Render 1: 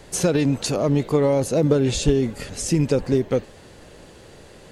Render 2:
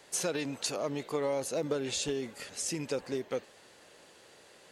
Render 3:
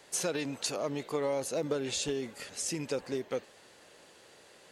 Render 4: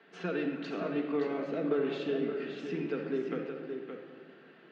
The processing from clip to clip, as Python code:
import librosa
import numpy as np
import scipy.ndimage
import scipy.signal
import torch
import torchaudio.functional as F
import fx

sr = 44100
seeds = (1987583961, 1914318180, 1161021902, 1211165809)

y1 = fx.highpass(x, sr, hz=830.0, slope=6)
y1 = y1 * librosa.db_to_amplitude(-6.5)
y2 = y1
y3 = fx.cabinet(y2, sr, low_hz=180.0, low_slope=24, high_hz=2800.0, hz=(180.0, 340.0, 540.0, 920.0, 1500.0, 2200.0), db=(7, 6, -8, -8, 4, -4))
y3 = y3 + 10.0 ** (-7.0 / 20.0) * np.pad(y3, (int(570 * sr / 1000.0), 0))[:len(y3)]
y3 = fx.room_shoebox(y3, sr, seeds[0], volume_m3=2100.0, walls='mixed', distance_m=1.6)
y3 = y3 * librosa.db_to_amplitude(-1.5)